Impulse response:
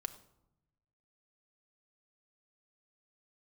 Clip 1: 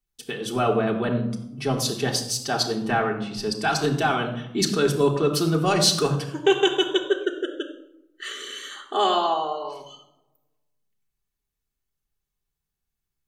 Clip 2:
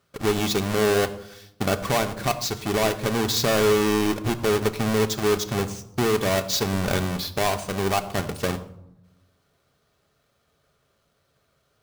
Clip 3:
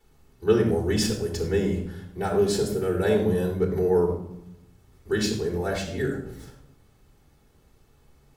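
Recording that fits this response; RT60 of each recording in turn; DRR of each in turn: 2; 0.80, 0.85, 0.80 s; -0.5, 7.0, -8.0 dB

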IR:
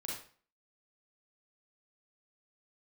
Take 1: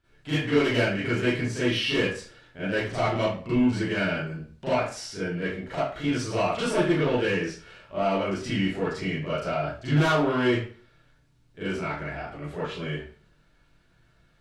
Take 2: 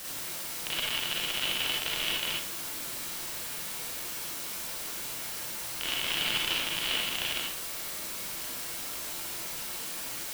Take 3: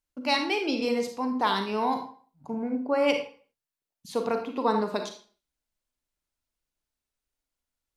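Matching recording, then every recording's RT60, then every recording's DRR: 2; 0.45, 0.45, 0.45 s; -12.5, -4.0, 4.5 dB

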